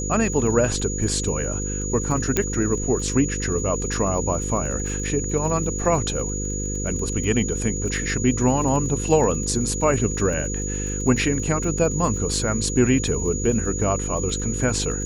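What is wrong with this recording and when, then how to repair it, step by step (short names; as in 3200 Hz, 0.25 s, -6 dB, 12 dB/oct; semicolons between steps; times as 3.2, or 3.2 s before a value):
buzz 50 Hz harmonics 10 -28 dBFS
crackle 31/s -31 dBFS
tone 6800 Hz -29 dBFS
2.37 pop -5 dBFS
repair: de-click; notch 6800 Hz, Q 30; de-hum 50 Hz, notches 10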